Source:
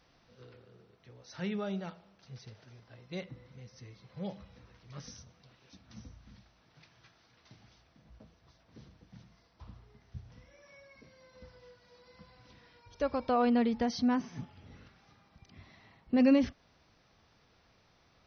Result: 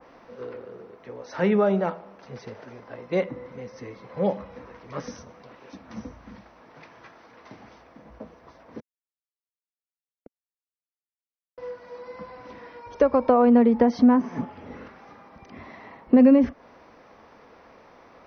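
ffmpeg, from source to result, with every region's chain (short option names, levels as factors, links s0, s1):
-filter_complex "[0:a]asettb=1/sr,asplit=3[s0][s1][s2];[s0]atrim=end=8.804[s3];[s1]atrim=start=8.8:end=11.58,asetpts=PTS-STARTPTS,afade=t=in:d=0.004:c=qsin,afade=t=out:st=2.776:d=0.004:c=qsin,acrossover=split=210|930[s4][s5][s6];[s5]adelay=40[s7];[s4]adelay=90[s8];[s8][s7][s6]amix=inputs=3:normalize=0,atrim=end_sample=122598,acrusher=bits=4:mix=0:aa=0.5[s9];[s2]atrim=start=11.576[s10];[s3][s9]acrossfade=d=0.004:c1=hsin:c2=qsin[s11];[s11][s10]acrossfade=d=0.004:c1=qsin:c2=hsin,equalizer=f=125:t=o:w=1:g=-4,equalizer=f=250:t=o:w=1:g=10,equalizer=f=500:t=o:w=1:g=12,equalizer=f=1000:t=o:w=1:g=11,equalizer=f=2000:t=o:w=1:g=7,equalizer=f=4000:t=o:w=1:g=-4,acrossover=split=170[s12][s13];[s13]acompressor=threshold=0.0891:ratio=6[s14];[s12][s14]amix=inputs=2:normalize=0,adynamicequalizer=threshold=0.00501:dfrequency=1900:dqfactor=0.7:tfrequency=1900:tqfactor=0.7:attack=5:release=100:ratio=0.375:range=2:mode=cutabove:tftype=highshelf,volume=1.78"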